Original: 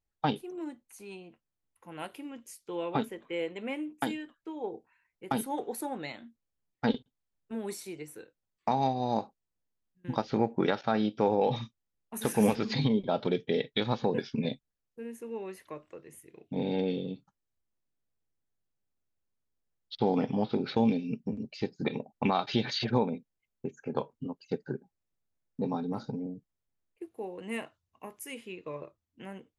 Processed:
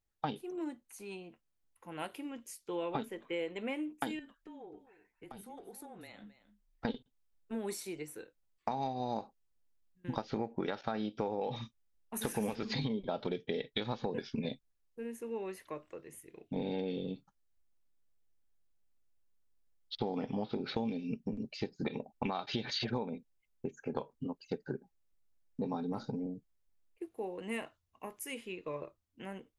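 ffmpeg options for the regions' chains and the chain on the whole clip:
ffmpeg -i in.wav -filter_complex "[0:a]asettb=1/sr,asplit=3[link_01][link_02][link_03];[link_01]atrim=end=4.194[link_04];[link_02]atrim=start=4.19:end=6.85,asetpts=PTS-STARTPTS,afade=type=in:duration=0.004:curve=qsin,afade=type=out:start_time=2.656:duration=0.004:curve=qsin,acompressor=threshold=-47dB:ratio=6:attack=3.2:release=140:knee=1:detection=peak,afreqshift=-27,aecho=1:1:265:0.178,atrim=end_sample=117306[link_05];[link_03]atrim=start=6.846[link_06];[link_04][link_05]acrossfade=duration=0.004:curve1=hsin:curve2=qsin[link_07];[link_07][link_06]acrossfade=duration=0.004:curve1=qsin:curve2=hsin,asubboost=boost=3:cutoff=55,acompressor=threshold=-32dB:ratio=6" out.wav

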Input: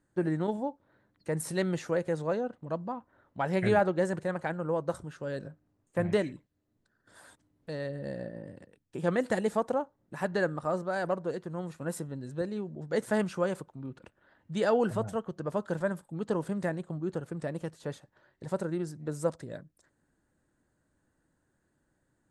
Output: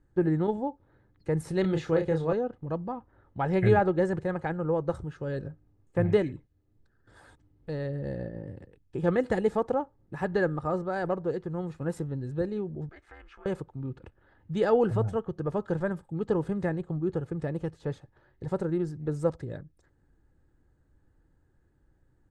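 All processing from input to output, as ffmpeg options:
ffmpeg -i in.wav -filter_complex "[0:a]asettb=1/sr,asplit=3[link_01][link_02][link_03];[link_01]atrim=end=1.614[link_04];[link_02]atrim=start=1.61:end=2.33,asetpts=PTS-STARTPTS,afade=type=in:duration=0.004:curve=qsin,afade=type=out:start_time=0.716:duration=0.004:curve=qsin,equalizer=frequency=3600:width_type=o:width=0.71:gain=6.5,asplit=2[link_05][link_06];[link_06]adelay=31,volume=-5.5dB[link_07];[link_05][link_07]amix=inputs=2:normalize=0,atrim=end_sample=31752[link_08];[link_03]atrim=start=2.326[link_09];[link_04][link_08]acrossfade=duration=0.004:curve1=hsin:curve2=qsin[link_10];[link_10][link_09]acrossfade=duration=0.004:curve1=qsin:curve2=hsin,asettb=1/sr,asplit=3[link_11][link_12][link_13];[link_11]atrim=end=12.894[link_14];[link_12]atrim=start=12.89:end=13.46,asetpts=PTS-STARTPTS,afade=type=in:duration=0.004:curve=qsin,afade=type=out:start_time=0.566:duration=0.004:curve=qsin,acompressor=threshold=-37dB:ratio=3:attack=3.2:release=140:knee=1:detection=peak,bandpass=frequency=2000:width_type=q:width=1.5,aeval=exprs='val(0)*sin(2*PI*150*n/s)':channel_layout=same[link_15];[link_13]atrim=start=13.456[link_16];[link_14][link_15]acrossfade=duration=0.004:curve1=hsin:curve2=qsin[link_17];[link_17][link_16]acrossfade=duration=0.004:curve1=qsin:curve2=hsin,aemphasis=mode=reproduction:type=bsi,aecho=1:1:2.4:0.37" out.wav

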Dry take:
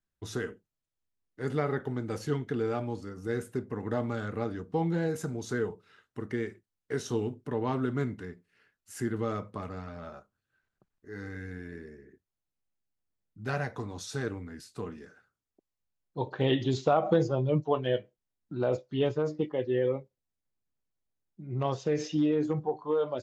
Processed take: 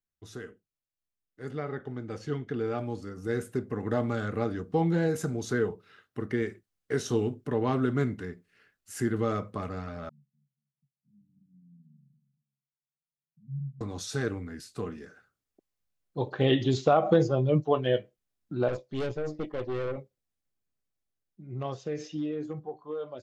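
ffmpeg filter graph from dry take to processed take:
ffmpeg -i in.wav -filter_complex "[0:a]asettb=1/sr,asplit=3[link_01][link_02][link_03];[link_01]atrim=end=1.514[link_04];[link_02]atrim=start=1.51:end=2.78,asetpts=PTS-STARTPTS,afade=type=in:duration=0.004:curve=qsin,afade=type=out:start_time=1.266:duration=0.004:curve=qsin,lowpass=5800,bandreject=frequency=4000:width=24[link_05];[link_03]atrim=start=2.776[link_06];[link_04][link_05]acrossfade=duration=0.004:curve1=hsin:curve2=qsin[link_07];[link_07][link_06]acrossfade=duration=0.004:curve1=qsin:curve2=hsin,asettb=1/sr,asplit=3[link_08][link_09][link_10];[link_08]atrim=end=5.494[link_11];[link_09]atrim=start=5.49:end=6.42,asetpts=PTS-STARTPTS,afade=type=in:duration=0.004:curve=qsin,afade=type=out:start_time=0.926:duration=0.004:curve=qsin,highpass=46,equalizer=frequency=7400:width=1.6:gain=-5[link_12];[link_10]atrim=start=6.416[link_13];[link_11][link_12]acrossfade=duration=0.004:curve1=hsin:curve2=qsin[link_14];[link_14][link_13]acrossfade=duration=0.004:curve1=qsin:curve2=hsin,asettb=1/sr,asplit=3[link_15][link_16][link_17];[link_15]atrim=end=10.094[link_18];[link_16]atrim=start=10.09:end=13.81,asetpts=PTS-STARTPTS,afade=type=in:duration=0.004:curve=qsin,afade=type=out:start_time=3.716:duration=0.004:curve=qsin,asuperpass=centerf=170:order=12:qfactor=2,aecho=1:1:2.6:0.94,atrim=end_sample=164052,aecho=1:1:235|470:0.251|0.0452,atrim=end_sample=164052[link_19];[link_17]atrim=start=13.806[link_20];[link_18][link_19]acrossfade=duration=0.004:curve1=hsin:curve2=qsin[link_21];[link_21][link_20]acrossfade=duration=0.004:curve1=qsin:curve2=hsin,asettb=1/sr,asplit=3[link_22][link_23][link_24];[link_22]atrim=end=18.684[link_25];[link_23]atrim=start=18.68:end=19.98,asetpts=PTS-STARTPTS,afade=type=in:duration=0.004:curve=qsin,afade=type=out:start_time=1.296:duration=0.004:curve=qsin,equalizer=frequency=1400:width_type=o:width=0.36:gain=-6.5,aeval=exprs='(tanh(35.5*val(0)+0.55)-tanh(0.55))/35.5':channel_layout=same[link_26];[link_24]atrim=start=19.976[link_27];[link_25][link_26]acrossfade=duration=0.004:curve1=hsin:curve2=qsin[link_28];[link_28][link_27]acrossfade=duration=0.004:curve1=qsin:curve2=hsin,bandreject=frequency=930:width=9.8,dynaudnorm=framelen=310:gausssize=17:maxgain=11dB,volume=-7.5dB" out.wav

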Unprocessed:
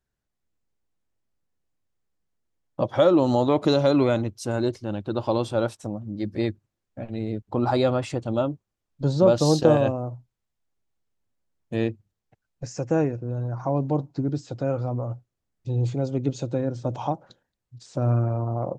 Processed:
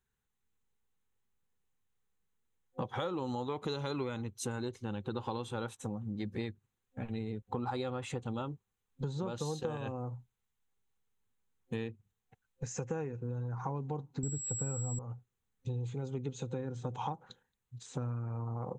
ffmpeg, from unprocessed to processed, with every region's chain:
ffmpeg -i in.wav -filter_complex "[0:a]asettb=1/sr,asplit=3[link_01][link_02][link_03];[link_01]atrim=end=14.234[link_04];[link_02]atrim=start=14.23:end=14.99,asetpts=PTS-STARTPTS,afade=type=in:duration=0.004:curve=qsin,afade=type=out:start_time=0.756:duration=0.004:curve=qsin,aemphasis=mode=reproduction:type=bsi,aeval=exprs='val(0)+0.0447*sin(2*PI*7700*n/s)':channel_layout=same[link_05];[link_03]atrim=start=14.986[link_06];[link_04][link_05]acrossfade=duration=0.004:curve1=hsin:curve2=qsin[link_07];[link_07][link_06]acrossfade=duration=0.004:curve1=qsin:curve2=hsin,superequalizer=6b=0.447:8b=0.251:14b=0.355,acompressor=threshold=-31dB:ratio=12,lowshelf=frequency=420:gain=-3" out.wav

